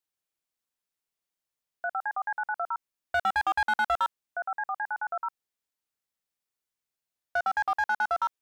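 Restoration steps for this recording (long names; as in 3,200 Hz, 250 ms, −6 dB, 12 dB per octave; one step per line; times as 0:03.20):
clipped peaks rebuilt −20.5 dBFS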